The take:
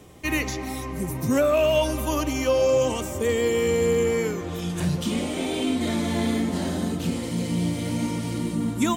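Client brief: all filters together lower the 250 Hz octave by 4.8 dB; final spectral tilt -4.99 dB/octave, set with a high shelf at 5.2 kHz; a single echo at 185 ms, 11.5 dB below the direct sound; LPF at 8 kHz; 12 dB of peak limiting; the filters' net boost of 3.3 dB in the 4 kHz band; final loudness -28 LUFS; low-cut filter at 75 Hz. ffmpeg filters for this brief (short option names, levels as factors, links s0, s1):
-af "highpass=75,lowpass=8000,equalizer=f=250:t=o:g=-6,equalizer=f=4000:t=o:g=7.5,highshelf=f=5200:g=-7,alimiter=limit=0.075:level=0:latency=1,aecho=1:1:185:0.266,volume=1.33"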